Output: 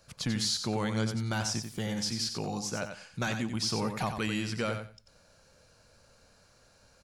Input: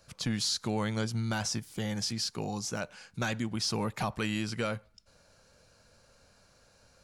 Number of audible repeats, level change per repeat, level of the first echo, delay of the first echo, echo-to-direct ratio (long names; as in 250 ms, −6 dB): 2, −14.5 dB, −7.5 dB, 91 ms, −7.5 dB